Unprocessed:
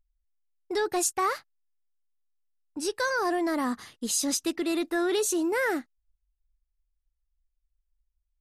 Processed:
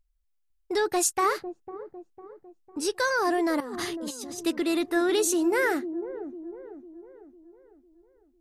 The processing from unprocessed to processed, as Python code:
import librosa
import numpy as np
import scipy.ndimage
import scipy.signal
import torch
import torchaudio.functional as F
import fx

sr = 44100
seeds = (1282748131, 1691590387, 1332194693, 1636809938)

p1 = fx.over_compress(x, sr, threshold_db=-40.0, ratio=-1.0, at=(3.6, 4.43))
p2 = p1 + fx.echo_wet_lowpass(p1, sr, ms=502, feedback_pct=46, hz=480.0, wet_db=-7.5, dry=0)
y = p2 * 10.0 ** (2.0 / 20.0)